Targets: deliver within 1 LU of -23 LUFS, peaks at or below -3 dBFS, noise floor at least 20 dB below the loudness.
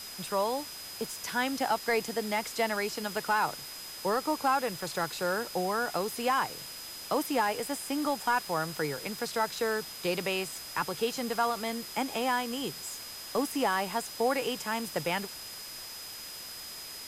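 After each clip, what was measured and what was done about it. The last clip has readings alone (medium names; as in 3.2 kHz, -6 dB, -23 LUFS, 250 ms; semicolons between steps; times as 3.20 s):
steady tone 5 kHz; tone level -44 dBFS; noise floor -43 dBFS; noise floor target -52 dBFS; loudness -31.5 LUFS; peak level -16.0 dBFS; loudness target -23.0 LUFS
-> band-stop 5 kHz, Q 30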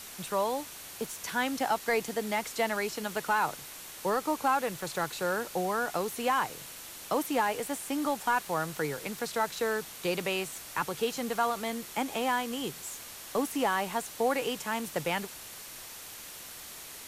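steady tone not found; noise floor -45 dBFS; noise floor target -52 dBFS
-> noise print and reduce 7 dB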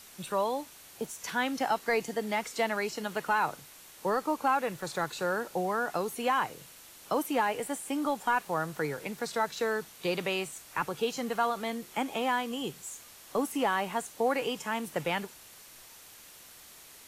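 noise floor -52 dBFS; loudness -31.5 LUFS; peak level -16.5 dBFS; loudness target -23.0 LUFS
-> trim +8.5 dB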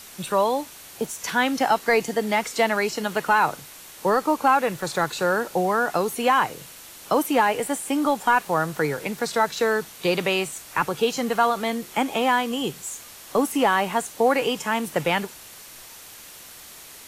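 loudness -23.0 LUFS; peak level -8.0 dBFS; noise floor -44 dBFS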